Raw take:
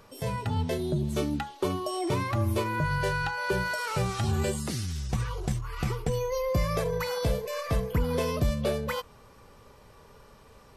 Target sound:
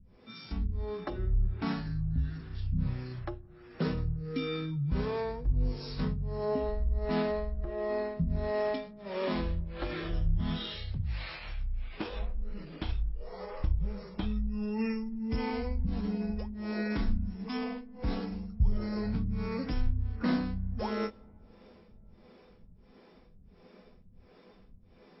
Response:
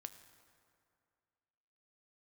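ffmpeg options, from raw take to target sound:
-filter_complex "[0:a]acrossover=split=420[s0][s1];[s0]aeval=exprs='val(0)*(1-1/2+1/2*cos(2*PI*3.4*n/s))':c=same[s2];[s1]aeval=exprs='val(0)*(1-1/2-1/2*cos(2*PI*3.4*n/s))':c=same[s3];[s2][s3]amix=inputs=2:normalize=0,asplit=2[s4][s5];[1:a]atrim=start_sample=2205,lowpass=3300[s6];[s5][s6]afir=irnorm=-1:irlink=0,volume=0.501[s7];[s4][s7]amix=inputs=2:normalize=0,asetrate=18846,aresample=44100"

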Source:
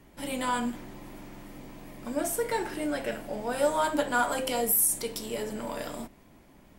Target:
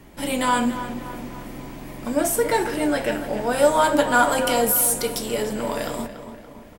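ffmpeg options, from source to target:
-filter_complex "[0:a]acrossover=split=1600[s0][s1];[s1]asoftclip=type=hard:threshold=0.0531[s2];[s0][s2]amix=inputs=2:normalize=0,asplit=2[s3][s4];[s4]adelay=286,lowpass=f=3100:p=1,volume=0.282,asplit=2[s5][s6];[s6]adelay=286,lowpass=f=3100:p=1,volume=0.53,asplit=2[s7][s8];[s8]adelay=286,lowpass=f=3100:p=1,volume=0.53,asplit=2[s9][s10];[s10]adelay=286,lowpass=f=3100:p=1,volume=0.53,asplit=2[s11][s12];[s12]adelay=286,lowpass=f=3100:p=1,volume=0.53,asplit=2[s13][s14];[s14]adelay=286,lowpass=f=3100:p=1,volume=0.53[s15];[s3][s5][s7][s9][s11][s13][s15]amix=inputs=7:normalize=0,volume=2.66"

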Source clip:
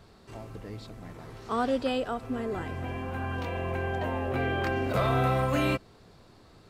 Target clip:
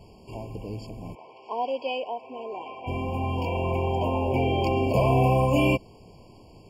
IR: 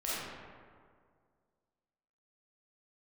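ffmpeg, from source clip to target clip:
-filter_complex "[0:a]asplit=3[s0][s1][s2];[s0]afade=t=out:st=1.14:d=0.02[s3];[s1]highpass=680,lowpass=3000,afade=t=in:st=1.14:d=0.02,afade=t=out:st=2.86:d=0.02[s4];[s2]afade=t=in:st=2.86:d=0.02[s5];[s3][s4][s5]amix=inputs=3:normalize=0,asettb=1/sr,asplit=3[s6][s7][s8];[s6]atrim=end=3.374[s9];[s7]atrim=start=3.37:end=4.44,asetpts=PTS-STARTPTS,afade=t=in:d=0.004:c=qsin,afade=t=out:st=1.066:d=0.004:c=qsin,aeval=exprs='val(0)+0.00501*sin(2*PI*910*n/s)':c=same[s10];[s8]atrim=start=4.436[s11];[s9][s10]acrossfade=d=0.004:c1=hsin:c2=qsin[s12];[s12][s11]acrossfade=d=0.004:c1=qsin:c2=hsin,afftfilt=real='re*eq(mod(floor(b*sr/1024/1100),2),0)':imag='im*eq(mod(floor(b*sr/1024/1100),2),0)':win_size=1024:overlap=0.75,volume=1.88"

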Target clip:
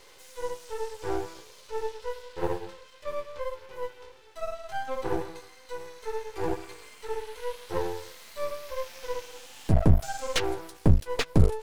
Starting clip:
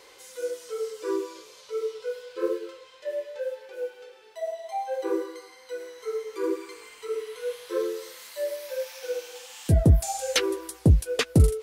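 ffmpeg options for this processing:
-filter_complex "[0:a]acrossover=split=5700[s0][s1];[s1]acompressor=threshold=0.00316:ratio=4:attack=1:release=60[s2];[s0][s2]amix=inputs=2:normalize=0,aeval=exprs='max(val(0),0)':c=same,volume=1.26"

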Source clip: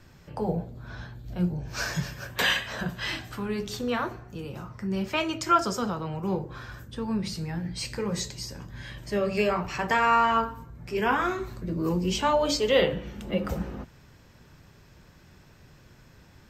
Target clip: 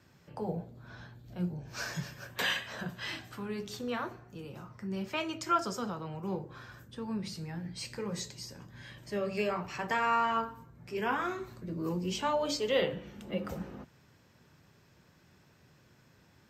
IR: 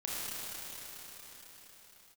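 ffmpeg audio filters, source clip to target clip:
-af "highpass=100,volume=0.447"

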